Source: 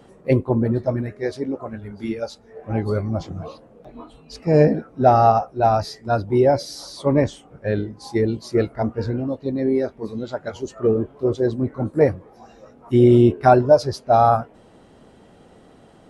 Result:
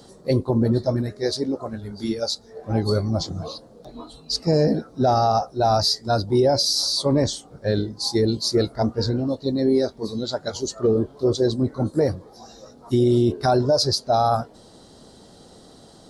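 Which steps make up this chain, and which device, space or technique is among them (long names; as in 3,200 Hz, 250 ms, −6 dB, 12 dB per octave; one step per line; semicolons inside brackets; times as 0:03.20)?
over-bright horn tweeter (high shelf with overshoot 3,300 Hz +9 dB, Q 3; brickwall limiter −11.5 dBFS, peak gain reduction 8.5 dB)
level +1 dB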